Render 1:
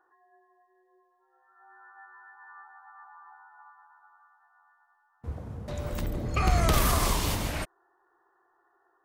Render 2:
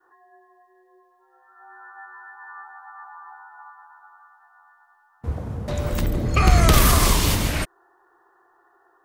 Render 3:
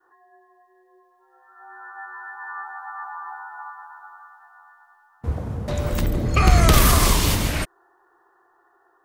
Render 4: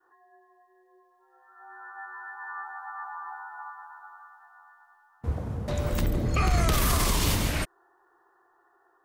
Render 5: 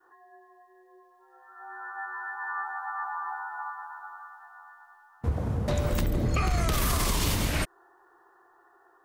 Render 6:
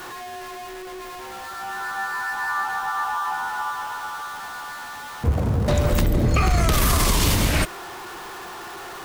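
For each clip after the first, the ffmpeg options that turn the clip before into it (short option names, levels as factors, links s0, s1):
-af "adynamicequalizer=threshold=0.00708:dfrequency=770:dqfactor=1.1:tfrequency=770:tqfactor=1.1:attack=5:release=100:ratio=0.375:range=2.5:mode=cutabove:tftype=bell,volume=2.82"
-af "dynaudnorm=f=580:g=7:m=2.82,volume=0.891"
-af "alimiter=limit=0.282:level=0:latency=1:release=27,volume=0.631"
-af "acompressor=threshold=0.0447:ratio=6,volume=1.68"
-af "aeval=exprs='val(0)+0.5*0.0133*sgn(val(0))':c=same,volume=2.11"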